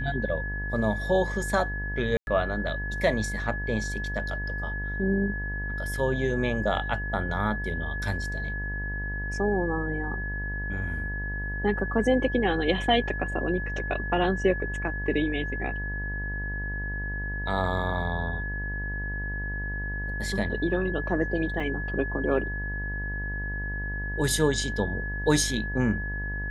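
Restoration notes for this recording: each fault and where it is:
buzz 50 Hz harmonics 22 -33 dBFS
whine 1.7 kHz -33 dBFS
2.17–2.27 s: dropout 101 ms
21.60 s: dropout 3.9 ms

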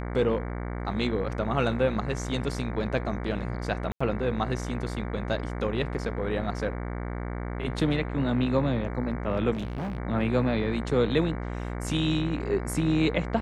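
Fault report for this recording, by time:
buzz 60 Hz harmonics 38 -33 dBFS
3.92–4.00 s: dropout 85 ms
9.53–9.98 s: clipped -29 dBFS

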